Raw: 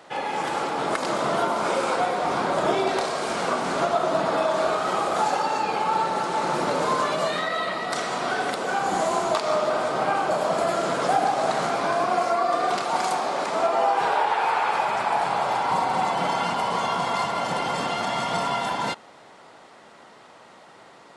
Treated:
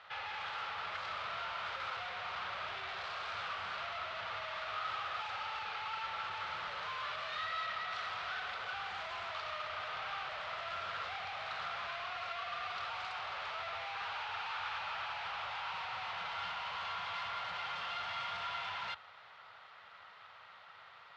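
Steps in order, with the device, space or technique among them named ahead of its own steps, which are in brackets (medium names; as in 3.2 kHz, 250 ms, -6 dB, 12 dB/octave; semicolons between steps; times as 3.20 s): scooped metal amplifier (valve stage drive 36 dB, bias 0.7; cabinet simulation 87–3700 Hz, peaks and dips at 96 Hz +8 dB, 140 Hz -3 dB, 240 Hz -4 dB, 1.3 kHz +7 dB; amplifier tone stack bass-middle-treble 10-0-10); trim +3.5 dB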